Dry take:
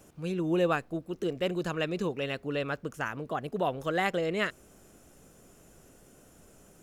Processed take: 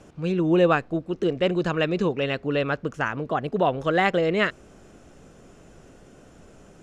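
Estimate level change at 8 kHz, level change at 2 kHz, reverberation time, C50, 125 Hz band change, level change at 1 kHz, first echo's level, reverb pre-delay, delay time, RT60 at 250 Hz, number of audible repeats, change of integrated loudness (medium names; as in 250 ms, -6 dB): no reading, +7.0 dB, no reverb, no reverb, +8.0 dB, +7.5 dB, no echo, no reverb, no echo, no reverb, no echo, +7.5 dB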